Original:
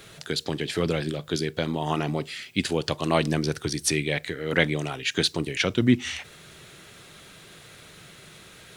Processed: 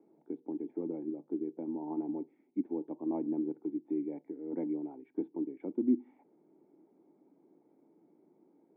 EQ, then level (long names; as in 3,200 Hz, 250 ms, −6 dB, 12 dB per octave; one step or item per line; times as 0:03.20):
formant resonators in series u
high-pass filter 230 Hz 24 dB per octave
high-frequency loss of the air 320 metres
0.0 dB